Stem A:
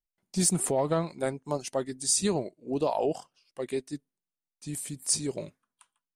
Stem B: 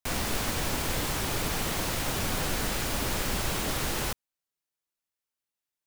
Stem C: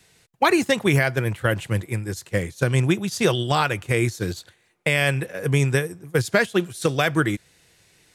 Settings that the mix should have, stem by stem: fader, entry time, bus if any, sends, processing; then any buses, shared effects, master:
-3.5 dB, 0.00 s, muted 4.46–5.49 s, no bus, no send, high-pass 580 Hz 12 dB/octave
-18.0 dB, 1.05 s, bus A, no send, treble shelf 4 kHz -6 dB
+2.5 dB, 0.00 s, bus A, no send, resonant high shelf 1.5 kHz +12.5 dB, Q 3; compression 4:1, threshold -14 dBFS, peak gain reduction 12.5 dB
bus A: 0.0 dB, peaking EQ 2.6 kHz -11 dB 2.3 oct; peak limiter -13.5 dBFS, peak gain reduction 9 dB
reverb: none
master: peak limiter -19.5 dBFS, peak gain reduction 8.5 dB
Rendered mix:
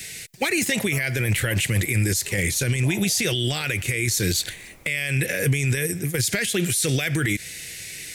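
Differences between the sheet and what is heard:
stem A -3.5 dB -> -13.5 dB; stem C +2.5 dB -> +14.5 dB; master: missing peak limiter -19.5 dBFS, peak gain reduction 8.5 dB

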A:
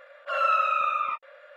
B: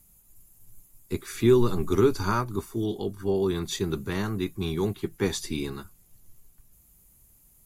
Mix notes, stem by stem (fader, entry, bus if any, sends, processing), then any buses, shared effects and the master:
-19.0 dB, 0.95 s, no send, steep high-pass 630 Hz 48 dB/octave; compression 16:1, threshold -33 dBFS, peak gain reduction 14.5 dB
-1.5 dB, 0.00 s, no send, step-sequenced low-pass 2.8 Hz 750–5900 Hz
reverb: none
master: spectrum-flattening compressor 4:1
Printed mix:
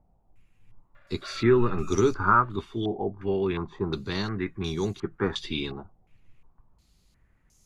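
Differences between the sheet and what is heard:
stem A -19.0 dB -> -8.0 dB; master: missing spectrum-flattening compressor 4:1

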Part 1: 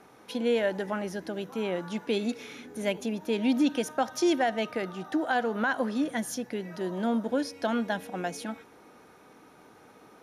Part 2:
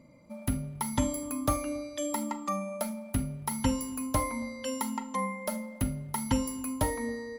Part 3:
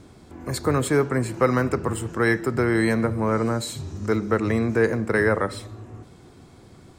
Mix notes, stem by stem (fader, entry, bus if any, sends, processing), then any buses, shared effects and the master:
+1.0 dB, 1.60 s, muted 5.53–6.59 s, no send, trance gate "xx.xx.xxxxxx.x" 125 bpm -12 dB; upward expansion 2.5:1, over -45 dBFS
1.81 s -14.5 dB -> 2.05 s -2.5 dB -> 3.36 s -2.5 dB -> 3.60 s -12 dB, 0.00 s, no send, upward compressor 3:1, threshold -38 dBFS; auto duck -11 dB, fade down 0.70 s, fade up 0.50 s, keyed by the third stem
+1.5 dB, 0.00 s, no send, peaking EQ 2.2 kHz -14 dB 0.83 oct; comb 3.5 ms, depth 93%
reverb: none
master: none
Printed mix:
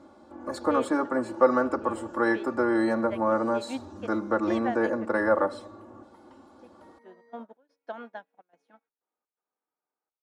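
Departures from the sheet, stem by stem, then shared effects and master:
stem 1: entry 1.60 s -> 0.25 s; master: extra band-pass filter 940 Hz, Q 0.83

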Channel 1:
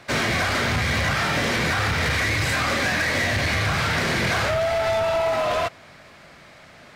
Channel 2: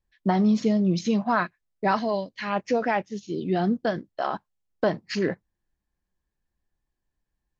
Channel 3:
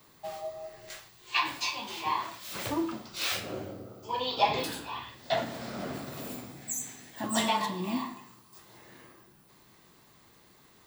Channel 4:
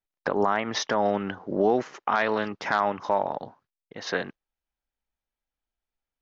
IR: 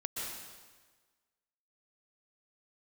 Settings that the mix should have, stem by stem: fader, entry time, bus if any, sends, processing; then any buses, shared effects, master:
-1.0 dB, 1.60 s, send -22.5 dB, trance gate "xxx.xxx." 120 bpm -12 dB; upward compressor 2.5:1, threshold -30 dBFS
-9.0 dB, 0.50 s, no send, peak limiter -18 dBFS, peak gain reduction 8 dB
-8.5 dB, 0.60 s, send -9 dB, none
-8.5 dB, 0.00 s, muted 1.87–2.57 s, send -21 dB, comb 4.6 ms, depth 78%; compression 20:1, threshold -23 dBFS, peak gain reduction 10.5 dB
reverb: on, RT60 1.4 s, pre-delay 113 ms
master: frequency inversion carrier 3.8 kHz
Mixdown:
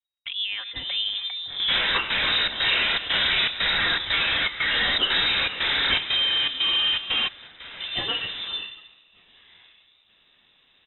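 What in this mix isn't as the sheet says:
stem 3 -8.5 dB -> -0.5 dB; stem 4: missing compression 20:1, threshold -23 dBFS, peak gain reduction 10.5 dB; reverb return -8.5 dB

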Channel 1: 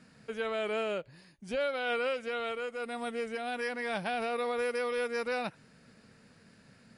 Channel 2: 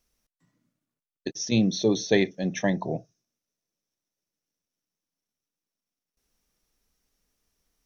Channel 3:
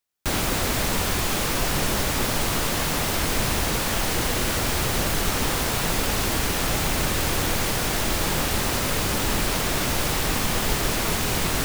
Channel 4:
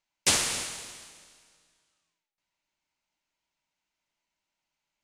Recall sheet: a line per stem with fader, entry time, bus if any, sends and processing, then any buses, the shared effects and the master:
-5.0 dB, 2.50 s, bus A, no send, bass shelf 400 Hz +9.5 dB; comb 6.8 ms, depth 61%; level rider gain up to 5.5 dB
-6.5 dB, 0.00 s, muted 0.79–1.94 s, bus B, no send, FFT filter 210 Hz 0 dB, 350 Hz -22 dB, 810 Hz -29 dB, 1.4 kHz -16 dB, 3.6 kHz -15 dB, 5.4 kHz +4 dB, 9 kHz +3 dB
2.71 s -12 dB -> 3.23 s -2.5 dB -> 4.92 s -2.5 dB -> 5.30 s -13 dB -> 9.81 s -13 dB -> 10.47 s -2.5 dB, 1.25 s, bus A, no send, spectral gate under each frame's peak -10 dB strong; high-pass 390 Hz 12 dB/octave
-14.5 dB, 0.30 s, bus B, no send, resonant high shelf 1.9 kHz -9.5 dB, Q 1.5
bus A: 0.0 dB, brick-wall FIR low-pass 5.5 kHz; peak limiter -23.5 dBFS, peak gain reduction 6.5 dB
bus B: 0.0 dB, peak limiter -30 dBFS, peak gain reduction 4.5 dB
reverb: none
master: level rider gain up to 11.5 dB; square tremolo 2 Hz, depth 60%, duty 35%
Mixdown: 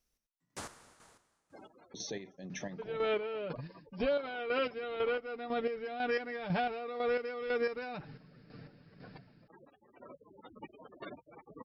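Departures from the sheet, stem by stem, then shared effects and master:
stem 2: missing FFT filter 210 Hz 0 dB, 350 Hz -22 dB, 810 Hz -29 dB, 1.4 kHz -16 dB, 3.6 kHz -15 dB, 5.4 kHz +4 dB, 9 kHz +3 dB; stem 3 -12.0 dB -> -19.0 dB; master: missing level rider gain up to 11.5 dB

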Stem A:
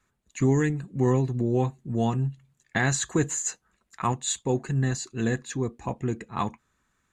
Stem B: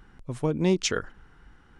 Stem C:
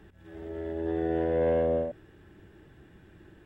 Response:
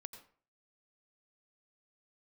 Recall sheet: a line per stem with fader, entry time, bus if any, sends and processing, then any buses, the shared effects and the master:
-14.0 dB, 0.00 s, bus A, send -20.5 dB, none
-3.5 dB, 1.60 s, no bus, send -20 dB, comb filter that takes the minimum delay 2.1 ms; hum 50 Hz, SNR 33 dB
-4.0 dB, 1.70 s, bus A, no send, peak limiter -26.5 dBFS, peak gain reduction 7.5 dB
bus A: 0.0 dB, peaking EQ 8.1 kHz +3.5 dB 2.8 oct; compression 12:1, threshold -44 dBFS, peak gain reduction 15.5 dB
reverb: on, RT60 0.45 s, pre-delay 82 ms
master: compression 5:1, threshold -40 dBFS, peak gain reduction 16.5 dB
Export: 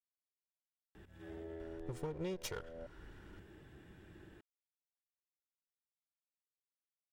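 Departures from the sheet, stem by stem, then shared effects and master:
stem A: muted; stem C: entry 1.70 s -> 0.95 s

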